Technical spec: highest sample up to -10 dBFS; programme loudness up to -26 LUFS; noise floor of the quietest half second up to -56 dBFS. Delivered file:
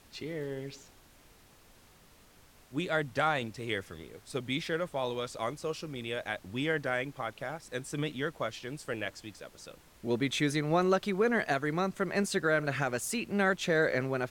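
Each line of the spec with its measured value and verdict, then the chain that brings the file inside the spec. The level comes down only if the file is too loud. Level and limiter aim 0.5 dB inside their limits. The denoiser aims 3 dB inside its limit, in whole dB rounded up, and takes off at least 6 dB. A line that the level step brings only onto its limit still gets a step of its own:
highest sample -16.0 dBFS: pass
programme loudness -32.5 LUFS: pass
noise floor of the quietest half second -59 dBFS: pass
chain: none needed

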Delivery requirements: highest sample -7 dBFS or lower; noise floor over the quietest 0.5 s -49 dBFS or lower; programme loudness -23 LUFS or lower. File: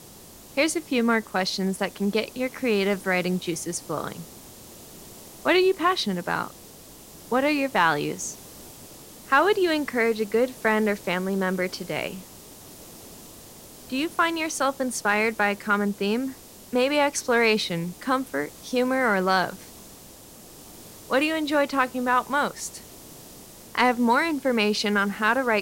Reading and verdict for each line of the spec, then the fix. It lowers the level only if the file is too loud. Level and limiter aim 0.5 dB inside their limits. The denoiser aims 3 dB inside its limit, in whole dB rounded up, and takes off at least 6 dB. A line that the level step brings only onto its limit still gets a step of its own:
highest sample -6.0 dBFS: fail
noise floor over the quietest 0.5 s -46 dBFS: fail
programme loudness -24.0 LUFS: pass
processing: noise reduction 6 dB, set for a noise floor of -46 dBFS; peak limiter -7.5 dBFS

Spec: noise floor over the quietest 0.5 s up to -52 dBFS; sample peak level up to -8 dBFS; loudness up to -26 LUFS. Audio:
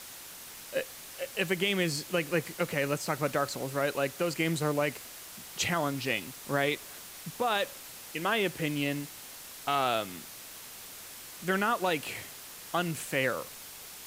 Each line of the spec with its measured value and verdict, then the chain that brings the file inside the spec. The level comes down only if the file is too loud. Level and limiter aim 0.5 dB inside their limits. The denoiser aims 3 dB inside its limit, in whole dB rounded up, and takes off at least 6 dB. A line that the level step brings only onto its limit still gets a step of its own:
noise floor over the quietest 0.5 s -46 dBFS: fail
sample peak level -14.0 dBFS: pass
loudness -31.0 LUFS: pass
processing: noise reduction 9 dB, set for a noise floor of -46 dBFS

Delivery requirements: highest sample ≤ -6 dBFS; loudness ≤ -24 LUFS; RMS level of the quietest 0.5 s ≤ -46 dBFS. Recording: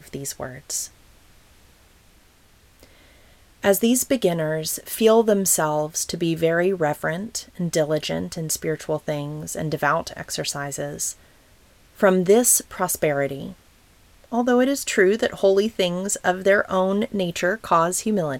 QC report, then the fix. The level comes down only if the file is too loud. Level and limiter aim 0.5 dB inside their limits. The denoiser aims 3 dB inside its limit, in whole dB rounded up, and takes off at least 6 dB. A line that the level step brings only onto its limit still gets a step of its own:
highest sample -5.5 dBFS: fail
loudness -21.5 LUFS: fail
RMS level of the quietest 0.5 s -54 dBFS: pass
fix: trim -3 dB

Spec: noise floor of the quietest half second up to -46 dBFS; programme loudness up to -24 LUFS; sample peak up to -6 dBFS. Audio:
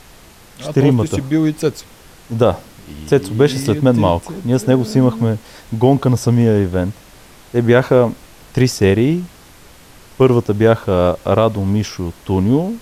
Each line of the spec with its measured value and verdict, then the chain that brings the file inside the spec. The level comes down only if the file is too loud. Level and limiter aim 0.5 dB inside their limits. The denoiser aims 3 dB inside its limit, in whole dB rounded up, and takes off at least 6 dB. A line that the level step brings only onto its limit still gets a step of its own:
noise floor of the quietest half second -43 dBFS: fail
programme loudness -15.5 LUFS: fail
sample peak -1.5 dBFS: fail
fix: trim -9 dB

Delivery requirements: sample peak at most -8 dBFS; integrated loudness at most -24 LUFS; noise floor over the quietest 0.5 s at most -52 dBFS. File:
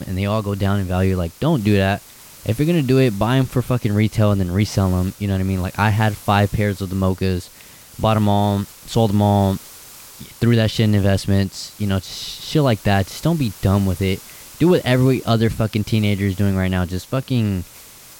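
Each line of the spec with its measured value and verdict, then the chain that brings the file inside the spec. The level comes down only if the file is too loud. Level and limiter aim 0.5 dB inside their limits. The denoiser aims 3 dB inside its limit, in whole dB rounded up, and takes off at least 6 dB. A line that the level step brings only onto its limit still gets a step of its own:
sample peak -4.5 dBFS: fail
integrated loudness -19.0 LUFS: fail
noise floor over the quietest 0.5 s -43 dBFS: fail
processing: noise reduction 7 dB, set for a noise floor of -43 dBFS; trim -5.5 dB

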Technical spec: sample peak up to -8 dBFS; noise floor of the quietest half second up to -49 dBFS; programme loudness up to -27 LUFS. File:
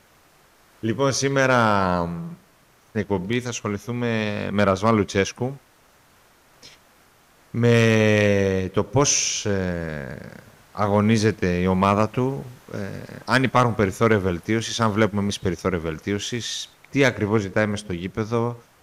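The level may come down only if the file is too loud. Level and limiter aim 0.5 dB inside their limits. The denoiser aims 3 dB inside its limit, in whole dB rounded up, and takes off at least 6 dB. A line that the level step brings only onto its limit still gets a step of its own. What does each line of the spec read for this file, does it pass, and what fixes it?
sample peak -6.0 dBFS: fail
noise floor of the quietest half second -57 dBFS: pass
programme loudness -22.0 LUFS: fail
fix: trim -5.5 dB

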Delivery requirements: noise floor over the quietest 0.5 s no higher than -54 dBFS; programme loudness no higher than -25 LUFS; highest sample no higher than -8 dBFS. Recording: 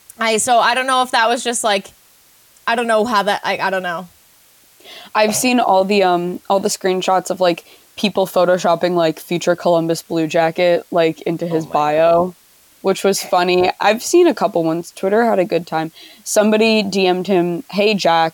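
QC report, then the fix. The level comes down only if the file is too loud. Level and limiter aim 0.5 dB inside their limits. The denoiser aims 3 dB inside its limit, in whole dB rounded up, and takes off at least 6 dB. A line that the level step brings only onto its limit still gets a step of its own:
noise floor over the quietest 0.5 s -50 dBFS: fail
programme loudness -16.0 LUFS: fail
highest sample -4.0 dBFS: fail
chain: trim -9.5 dB

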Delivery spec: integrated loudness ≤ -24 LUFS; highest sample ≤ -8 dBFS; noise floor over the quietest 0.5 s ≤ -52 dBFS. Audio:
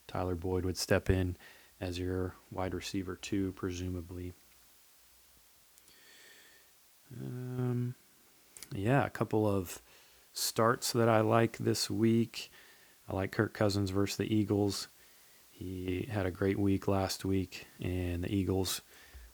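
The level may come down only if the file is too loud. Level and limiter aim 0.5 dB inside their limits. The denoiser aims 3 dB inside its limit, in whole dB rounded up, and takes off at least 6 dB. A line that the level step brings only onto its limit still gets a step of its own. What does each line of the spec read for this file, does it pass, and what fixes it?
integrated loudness -33.5 LUFS: pass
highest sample -13.0 dBFS: pass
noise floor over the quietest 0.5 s -63 dBFS: pass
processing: none needed

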